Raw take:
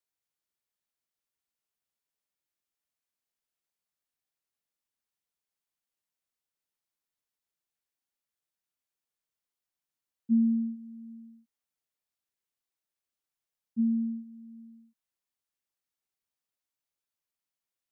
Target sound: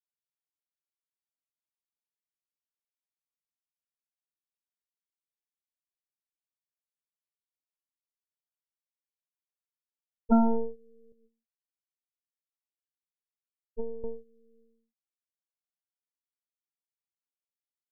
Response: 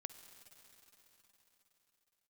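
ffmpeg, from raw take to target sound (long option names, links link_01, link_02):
-filter_complex "[0:a]asettb=1/sr,asplit=3[link_01][link_02][link_03];[link_01]atrim=end=11.124[link_04];[link_02]atrim=start=11.12:end=14.04,asetpts=PTS-STARTPTS,afade=type=in:duration=0.004:curve=qsin,afade=type=out:start_time=2.916:duration=0.004:curve=qsin,flanger=delay=7.7:depth=3.4:regen=47:speed=1.6:shape=sinusoidal[link_05];[link_03]atrim=start=14.036[link_06];[link_04][link_05]acrossfade=duration=0.004:curve1=hsin:curve2=qsin[link_07];[link_07][link_06]acrossfade=duration=0.004:curve1=qsin:curve2=hsin,aeval=exprs='0.133*(cos(1*acos(clip(val(0)/0.133,-1,1)))-cos(1*PI/2))+0.0422*(cos(3*acos(clip(val(0)/0.133,-1,1)))-cos(3*PI/2))+0.0237*(cos(6*acos(clip(val(0)/0.133,-1,1)))-cos(6*PI/2))':channel_layout=same,volume=4dB"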